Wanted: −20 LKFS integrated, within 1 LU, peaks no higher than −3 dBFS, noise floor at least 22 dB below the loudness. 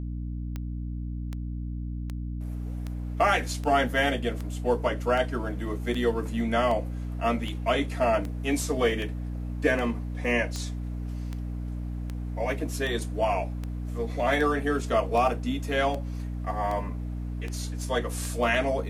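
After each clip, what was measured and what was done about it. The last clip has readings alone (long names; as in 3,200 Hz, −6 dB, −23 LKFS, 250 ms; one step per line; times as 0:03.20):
number of clicks 24; mains hum 60 Hz; hum harmonics up to 300 Hz; level of the hum −30 dBFS; integrated loudness −28.5 LKFS; sample peak −10.5 dBFS; target loudness −20.0 LKFS
→ click removal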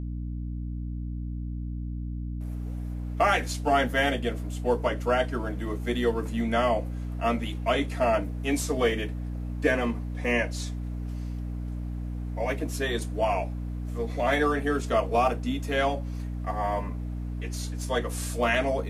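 number of clicks 0; mains hum 60 Hz; hum harmonics up to 300 Hz; level of the hum −30 dBFS
→ hum removal 60 Hz, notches 5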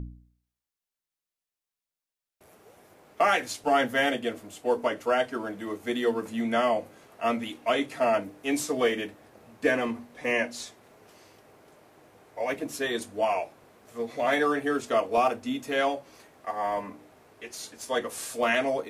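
mains hum none found; integrated loudness −28.0 LKFS; sample peak −12.0 dBFS; target loudness −20.0 LKFS
→ level +8 dB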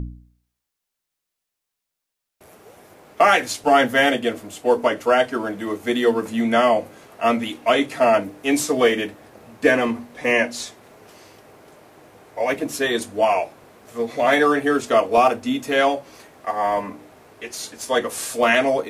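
integrated loudness −20.0 LKFS; sample peak −4.0 dBFS; background noise floor −82 dBFS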